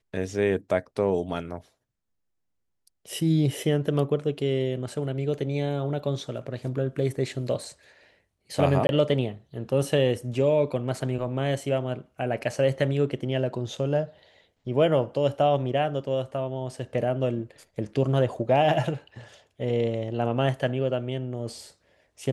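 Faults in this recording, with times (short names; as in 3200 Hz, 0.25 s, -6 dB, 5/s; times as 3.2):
8.87–8.89 gap 21 ms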